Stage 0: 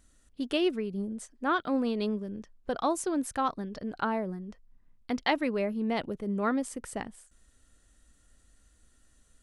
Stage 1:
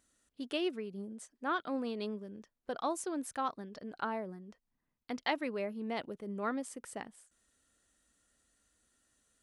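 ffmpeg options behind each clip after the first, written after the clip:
-af "highpass=f=260:p=1,volume=-5.5dB"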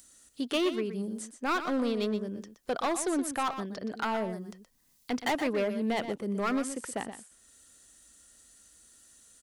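-filter_complex "[0:a]acrossover=split=440|4000[a][b][c];[c]acompressor=mode=upward:threshold=-57dB:ratio=2.5[d];[a][b][d]amix=inputs=3:normalize=0,asoftclip=type=hard:threshold=-33dB,aecho=1:1:122:0.299,volume=8.5dB"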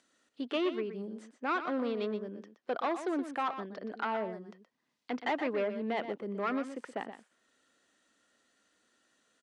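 -af "highpass=250,lowpass=2.8k,volume=-2dB"

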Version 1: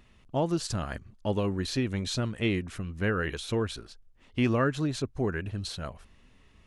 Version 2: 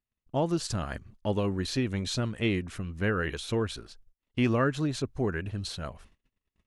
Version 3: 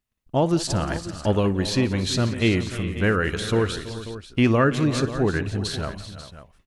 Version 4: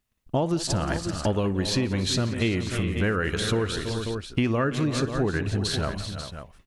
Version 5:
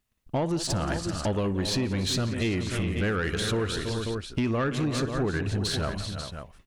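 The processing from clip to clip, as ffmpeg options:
-af "agate=range=-34dB:threshold=-53dB:ratio=16:detection=peak"
-af "aecho=1:1:60|175|332|386|540:0.119|0.112|0.178|0.188|0.2,volume=7dB"
-af "acompressor=threshold=-27dB:ratio=4,volume=4.5dB"
-af "asoftclip=type=tanh:threshold=-20dB"

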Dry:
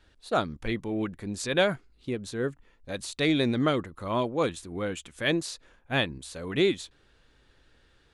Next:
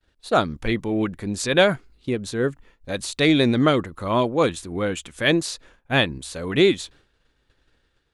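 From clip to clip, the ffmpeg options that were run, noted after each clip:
-af "agate=range=-33dB:threshold=-52dB:ratio=3:detection=peak,volume=7dB"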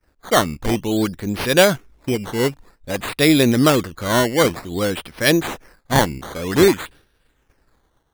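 -af "acrusher=samples=12:mix=1:aa=0.000001:lfo=1:lforange=12:lforate=0.53,volume=3.5dB"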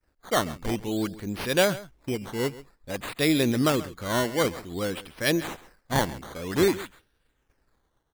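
-af "aecho=1:1:135:0.133,volume=-8.5dB"

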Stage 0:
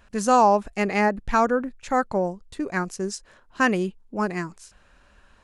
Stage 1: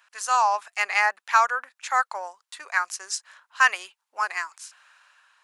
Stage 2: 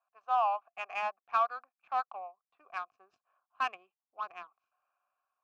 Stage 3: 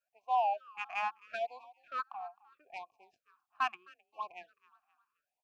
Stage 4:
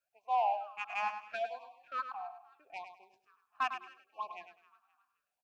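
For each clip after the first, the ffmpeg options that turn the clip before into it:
-af "highpass=f=970:w=0.5412,highpass=f=970:w=1.3066,dynaudnorm=f=140:g=7:m=5.5dB"
-filter_complex "[0:a]adynamicsmooth=sensitivity=1:basefreq=780,asubboost=boost=11:cutoff=220,asplit=3[a][b][c];[a]bandpass=f=730:t=q:w=8,volume=0dB[d];[b]bandpass=f=1.09k:t=q:w=8,volume=-6dB[e];[c]bandpass=f=2.44k:t=q:w=8,volume=-9dB[f];[d][e][f]amix=inputs=3:normalize=0,volume=2dB"
-filter_complex "[0:a]asplit=4[a][b][c][d];[b]adelay=262,afreqshift=36,volume=-21.5dB[e];[c]adelay=524,afreqshift=72,volume=-29.9dB[f];[d]adelay=786,afreqshift=108,volume=-38.3dB[g];[a][e][f][g]amix=inputs=4:normalize=0,afftfilt=real='re*(1-between(b*sr/1024,440*pow(1600/440,0.5+0.5*sin(2*PI*0.77*pts/sr))/1.41,440*pow(1600/440,0.5+0.5*sin(2*PI*0.77*pts/sr))*1.41))':imag='im*(1-between(b*sr/1024,440*pow(1600/440,0.5+0.5*sin(2*PI*0.77*pts/sr))/1.41,440*pow(1600/440,0.5+0.5*sin(2*PI*0.77*pts/sr))*1.41))':win_size=1024:overlap=0.75"
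-af "asoftclip=type=tanh:threshold=-21dB,aecho=1:1:102|204|306:0.355|0.0816|0.0188"

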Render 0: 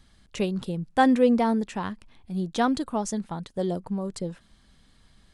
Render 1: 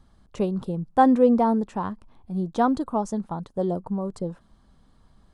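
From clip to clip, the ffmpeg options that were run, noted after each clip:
-af "highshelf=f=1.5k:t=q:w=1.5:g=-9.5,volume=1.5dB"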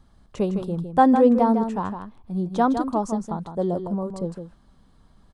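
-af "aecho=1:1:158:0.398,volume=1dB"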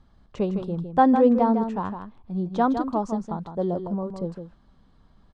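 -af "lowpass=4.9k,volume=-1.5dB"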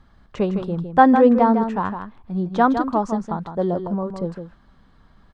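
-af "equalizer=f=1.7k:w=1.1:g=7,volume=3.5dB"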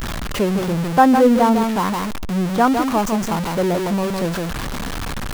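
-af "aeval=exprs='val(0)+0.5*0.119*sgn(val(0))':c=same,volume=-1dB"

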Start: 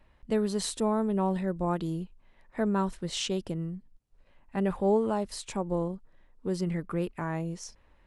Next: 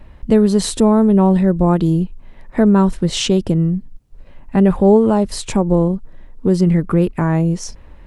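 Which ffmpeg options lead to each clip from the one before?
-filter_complex "[0:a]lowshelf=f=450:g=9.5,asplit=2[a][b];[b]acompressor=threshold=-29dB:ratio=6,volume=1dB[c];[a][c]amix=inputs=2:normalize=0,volume=6.5dB"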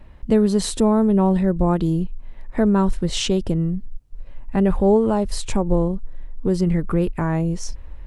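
-af "asubboost=boost=3:cutoff=82,volume=-4dB"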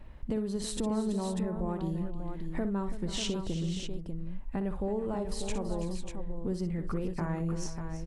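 -filter_complex "[0:a]acompressor=threshold=-27dB:ratio=4,asplit=2[a][b];[b]aecho=0:1:60|330|471|593:0.299|0.224|0.168|0.422[c];[a][c]amix=inputs=2:normalize=0,volume=-5dB"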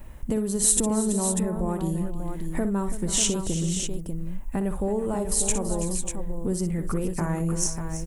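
-af "aexciter=amount=4.2:drive=8.5:freq=6.4k,volume=6dB"

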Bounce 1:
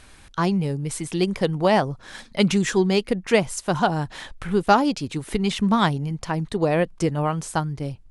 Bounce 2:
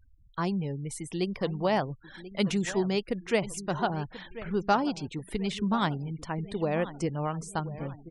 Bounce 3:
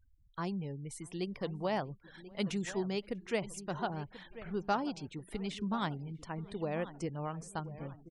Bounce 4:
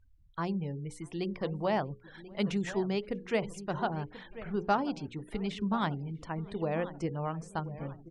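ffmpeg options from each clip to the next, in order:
-filter_complex "[0:a]asplit=2[a][b];[b]adelay=1036,lowpass=f=4.9k:p=1,volume=-15dB,asplit=2[c][d];[d]adelay=1036,lowpass=f=4.9k:p=1,volume=0.47,asplit=2[e][f];[f]adelay=1036,lowpass=f=4.9k:p=1,volume=0.47,asplit=2[g][h];[h]adelay=1036,lowpass=f=4.9k:p=1,volume=0.47[i];[a][c][e][g][i]amix=inputs=5:normalize=0,afftfilt=real='re*gte(hypot(re,im),0.0126)':imag='im*gte(hypot(re,im),0.0126)':win_size=1024:overlap=0.75,volume=-8dB"
-filter_complex "[0:a]asplit=2[a][b];[b]adelay=641.4,volume=-27dB,highshelf=f=4k:g=-14.4[c];[a][c]amix=inputs=2:normalize=0,volume=-7.5dB"
-af "aemphasis=mode=reproduction:type=50kf,bandreject=f=60:t=h:w=6,bandreject=f=120:t=h:w=6,bandreject=f=180:t=h:w=6,bandreject=f=240:t=h:w=6,bandreject=f=300:t=h:w=6,bandreject=f=360:t=h:w=6,bandreject=f=420:t=h:w=6,bandreject=f=480:t=h:w=6,bandreject=f=540:t=h:w=6,volume=4.5dB"

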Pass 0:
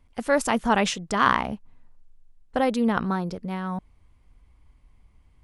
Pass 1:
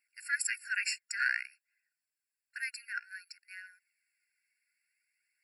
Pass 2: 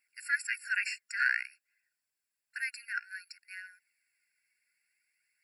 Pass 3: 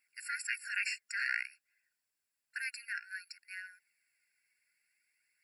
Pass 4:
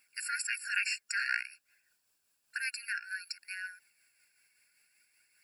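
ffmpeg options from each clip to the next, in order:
-af "highshelf=f=8.5k:g=10.5,flanger=delay=0.3:depth=3.8:regen=41:speed=0.55:shape=triangular,afftfilt=real='re*eq(mod(floor(b*sr/1024/1400),2),1)':imag='im*eq(mod(floor(b*sr/1024/1400),2),1)':win_size=1024:overlap=0.75"
-filter_complex "[0:a]acrossover=split=3000[a][b];[b]acompressor=threshold=-43dB:ratio=4:attack=1:release=60[c];[a][c]amix=inputs=2:normalize=0,volume=2.5dB"
-af "afftfilt=real='re*lt(hypot(re,im),0.178)':imag='im*lt(hypot(re,im),0.178)':win_size=1024:overlap=0.75"
-filter_complex "[0:a]asplit=2[a][b];[b]acompressor=threshold=-46dB:ratio=6,volume=3dB[c];[a][c]amix=inputs=2:normalize=0,tremolo=f=5.2:d=0.36,equalizer=f=2k:w=5.8:g=-10.5,volume=4.5dB"

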